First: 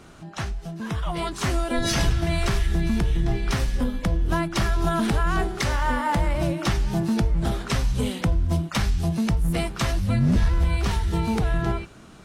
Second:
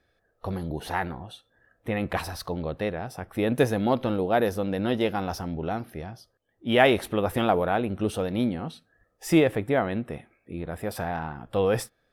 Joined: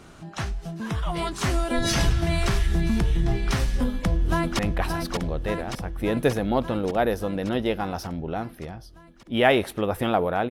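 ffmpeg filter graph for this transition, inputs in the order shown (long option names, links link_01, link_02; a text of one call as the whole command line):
ffmpeg -i cue0.wav -i cue1.wav -filter_complex "[0:a]apad=whole_dur=10.5,atrim=end=10.5,atrim=end=4.592[link_01];[1:a]atrim=start=1.938:end=7.85[link_02];[link_01][link_02]acrossfade=duration=0.004:curve1=hsin:curve2=hsin,asplit=2[link_03][link_04];[link_04]afade=type=in:start_time=3.85:duration=0.01,afade=type=out:start_time=4.59:duration=0.01,aecho=0:1:580|1160|1740|2320|2900|3480|4060|4640|5220|5800|6380|6960:0.562341|0.393639|0.275547|0.192883|0.135018|0.0945127|0.0661589|0.0463112|0.0324179|0.0226925|0.0158848|0.0111193[link_05];[link_03][link_05]amix=inputs=2:normalize=0" out.wav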